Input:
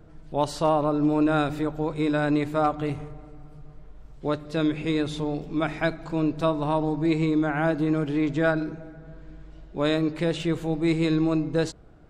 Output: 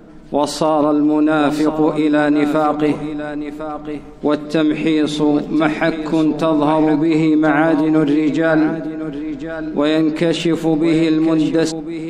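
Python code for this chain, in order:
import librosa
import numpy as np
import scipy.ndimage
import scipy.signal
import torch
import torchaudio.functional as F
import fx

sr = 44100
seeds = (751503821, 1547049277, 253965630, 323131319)

p1 = fx.low_shelf_res(x, sr, hz=160.0, db=-9.5, q=3.0)
p2 = fx.over_compress(p1, sr, threshold_db=-24.0, ratio=-0.5)
p3 = p1 + (p2 * librosa.db_to_amplitude(2.0))
p4 = p3 + 10.0 ** (-10.5 / 20.0) * np.pad(p3, (int(1055 * sr / 1000.0), 0))[:len(p3)]
y = p4 * librosa.db_to_amplitude(2.5)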